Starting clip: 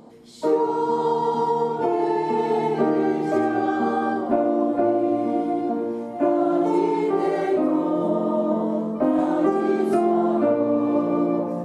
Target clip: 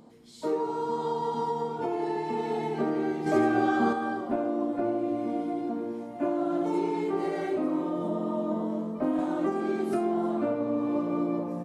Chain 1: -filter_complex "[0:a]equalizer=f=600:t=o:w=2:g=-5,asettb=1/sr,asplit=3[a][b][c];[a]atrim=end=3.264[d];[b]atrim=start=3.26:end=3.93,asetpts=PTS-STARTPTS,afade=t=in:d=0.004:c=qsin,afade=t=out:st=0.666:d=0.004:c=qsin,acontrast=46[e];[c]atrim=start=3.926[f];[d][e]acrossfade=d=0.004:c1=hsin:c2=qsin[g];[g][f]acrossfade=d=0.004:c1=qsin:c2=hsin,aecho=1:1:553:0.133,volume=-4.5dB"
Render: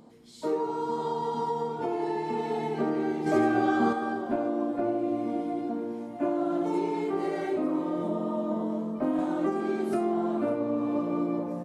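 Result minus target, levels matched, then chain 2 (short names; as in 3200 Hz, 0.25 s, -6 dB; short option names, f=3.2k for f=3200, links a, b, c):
echo 0.232 s late
-filter_complex "[0:a]equalizer=f=600:t=o:w=2:g=-5,asettb=1/sr,asplit=3[a][b][c];[a]atrim=end=3.264[d];[b]atrim=start=3.26:end=3.93,asetpts=PTS-STARTPTS,afade=t=in:d=0.004:c=qsin,afade=t=out:st=0.666:d=0.004:c=qsin,acontrast=46[e];[c]atrim=start=3.926[f];[d][e]acrossfade=d=0.004:c1=hsin:c2=qsin[g];[g][f]acrossfade=d=0.004:c1=qsin:c2=hsin,aecho=1:1:321:0.133,volume=-4.5dB"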